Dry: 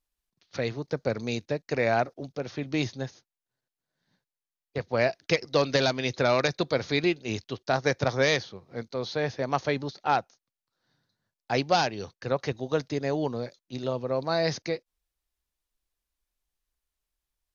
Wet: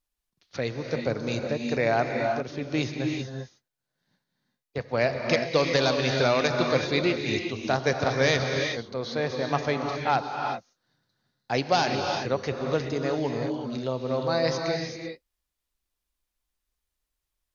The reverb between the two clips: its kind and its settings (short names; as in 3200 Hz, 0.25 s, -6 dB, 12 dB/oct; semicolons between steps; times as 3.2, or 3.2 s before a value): non-linear reverb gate 0.41 s rising, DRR 2.5 dB